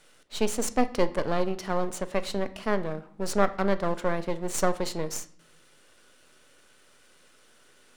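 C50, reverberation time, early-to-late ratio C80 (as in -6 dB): 16.5 dB, 0.60 s, 20.5 dB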